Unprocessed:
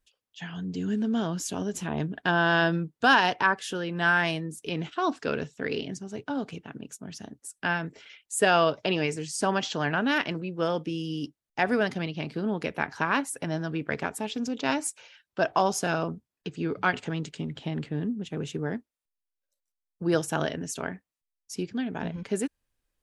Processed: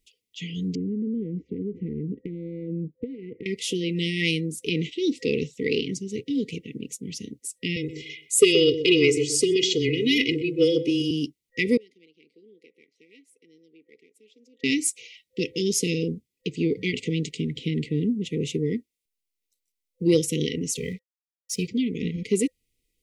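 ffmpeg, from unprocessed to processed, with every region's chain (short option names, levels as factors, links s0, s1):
-filter_complex "[0:a]asettb=1/sr,asplit=3[s0][s1][s2];[s0]atrim=end=0.754[s3];[s1]atrim=start=0.75:end=3.46,asetpts=PTS-STARTPTS,afade=t=in:d=0.004:c=qsin,afade=t=out:st=2.706:d=0.004:c=qsin,lowpass=f=1200:w=0.5412,lowpass=f=1200:w=1.3066,acompressor=threshold=0.0316:ratio=16:attack=3.2:release=140:knee=1:detection=peak[s4];[s2]atrim=start=3.456[s5];[s3][s4]acrossfade=d=0.004:c1=hsin:c2=qsin[s6];[s6][s5]acrossfade=d=0.004:c1=qsin:c2=hsin,asettb=1/sr,asplit=3[s7][s8][s9];[s7]atrim=end=7.764[s10];[s8]atrim=start=7.76:end=11.11,asetpts=PTS-STARTPTS,afade=t=in:d=0.004:c=qsin,afade=t=out:st=3.346:d=0.004:c=qsin,aecho=1:1:2.4:0.83,atrim=end_sample=147735,afreqshift=-14,asplit=2[s11][s12];[s12]adelay=126,lowpass=f=830:p=1,volume=0.376,asplit=2[s13][s14];[s14]adelay=126,lowpass=f=830:p=1,volume=0.26,asplit=2[s15][s16];[s16]adelay=126,lowpass=f=830:p=1,volume=0.26[s17];[s11][s13][s15][s17]amix=inputs=4:normalize=0,atrim=end_sample=147735[s18];[s9]atrim=start=11.106[s19];[s10][s18]acrossfade=d=0.004:c1=hsin:c2=qsin[s20];[s20][s19]acrossfade=d=0.004:c1=qsin:c2=hsin,asettb=1/sr,asplit=3[s21][s22][s23];[s21]atrim=end=11.774[s24];[s22]atrim=start=11.77:end=14.64,asetpts=PTS-STARTPTS,afade=t=in:d=0.004:c=qsin,afade=t=out:st=2.866:d=0.004:c=qsin,aeval=exprs='if(lt(val(0),0),0.708*val(0),val(0))':c=same,bandpass=f=370:t=q:w=1.4,aderivative[s25];[s23]atrim=start=14.636[s26];[s24][s25]acrossfade=d=0.004:c1=hsin:c2=qsin[s27];[s27][s26]acrossfade=d=0.004:c1=qsin:c2=hsin,asettb=1/sr,asplit=3[s28][s29][s30];[s28]atrim=end=20.774[s31];[s29]atrim=start=20.77:end=21.68,asetpts=PTS-STARTPTS,afade=t=in:d=0.004:c=qsin,afade=t=out:st=0.906:d=0.004:c=qsin,aecho=1:1:1.6:1,atrim=end_sample=40131,aeval=exprs='sgn(val(0))*max(abs(val(0))-0.00158,0)':c=same[s32];[s30]atrim=start=21.676[s33];[s31][s32]acrossfade=d=0.004:c1=hsin:c2=qsin[s34];[s34][s33]acrossfade=d=0.004:c1=qsin:c2=hsin,afftfilt=real='re*(1-between(b*sr/4096,510,1900))':imag='im*(1-between(b*sr/4096,510,1900))':win_size=4096:overlap=0.75,lowshelf=f=130:g=-5,acontrast=81"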